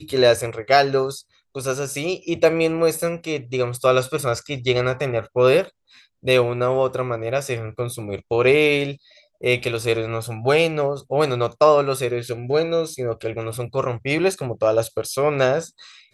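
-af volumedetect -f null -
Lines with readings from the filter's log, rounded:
mean_volume: -21.1 dB
max_volume: -1.9 dB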